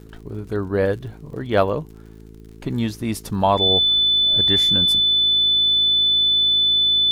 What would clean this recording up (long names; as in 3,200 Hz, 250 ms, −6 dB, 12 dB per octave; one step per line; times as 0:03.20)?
click removal
hum removal 54.6 Hz, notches 8
notch filter 3,500 Hz, Q 30